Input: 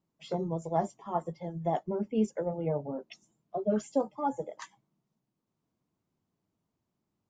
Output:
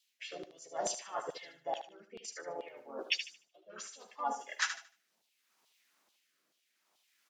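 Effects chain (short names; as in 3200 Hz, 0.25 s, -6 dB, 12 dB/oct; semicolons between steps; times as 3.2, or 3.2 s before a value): graphic EQ 125/250/1000 Hz -6/+4/-10 dB; reverse; compressor 8:1, threshold -44 dBFS, peak gain reduction 21.5 dB; reverse; harmoniser -3 st -1 dB; rotary speaker horn 0.65 Hz; LFO high-pass saw down 2.3 Hz 790–3600 Hz; on a send: thinning echo 75 ms, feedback 28%, high-pass 400 Hz, level -8.5 dB; on the sum: gain +16 dB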